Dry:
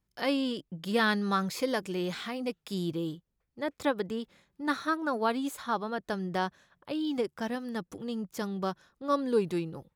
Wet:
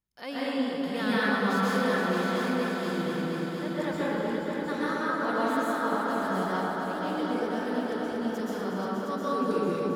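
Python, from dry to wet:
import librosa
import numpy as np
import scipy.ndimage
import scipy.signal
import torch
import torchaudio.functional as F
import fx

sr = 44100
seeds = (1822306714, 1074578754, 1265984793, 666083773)

p1 = fx.low_shelf(x, sr, hz=470.0, db=-2.5)
p2 = p1 + fx.echo_heads(p1, sr, ms=238, heads='all three', feedback_pct=63, wet_db=-9, dry=0)
p3 = fx.rev_plate(p2, sr, seeds[0], rt60_s=2.5, hf_ratio=0.3, predelay_ms=110, drr_db=-9.0)
y = F.gain(torch.from_numpy(p3), -8.0).numpy()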